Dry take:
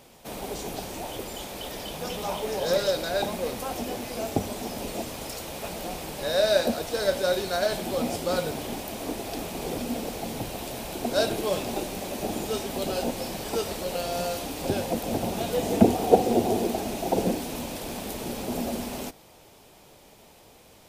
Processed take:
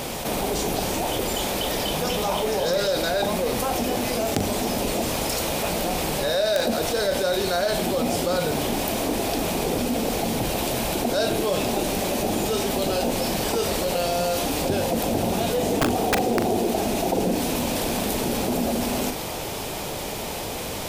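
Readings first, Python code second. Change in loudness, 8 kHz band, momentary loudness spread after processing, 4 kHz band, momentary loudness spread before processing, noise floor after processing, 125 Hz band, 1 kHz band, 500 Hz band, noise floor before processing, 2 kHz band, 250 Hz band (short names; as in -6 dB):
+4.5 dB, +8.0 dB, 3 LU, +6.5 dB, 11 LU, -31 dBFS, +5.5 dB, +5.5 dB, +3.5 dB, -53 dBFS, +6.5 dB, +4.5 dB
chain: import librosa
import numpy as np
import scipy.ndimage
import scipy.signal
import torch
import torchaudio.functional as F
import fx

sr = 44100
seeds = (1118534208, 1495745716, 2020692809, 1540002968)

y = (np.mod(10.0 ** (9.5 / 20.0) * x + 1.0, 2.0) - 1.0) / 10.0 ** (9.5 / 20.0)
y = fx.doubler(y, sr, ms=40.0, db=-13)
y = fx.env_flatten(y, sr, amount_pct=70)
y = y * 10.0 ** (-4.5 / 20.0)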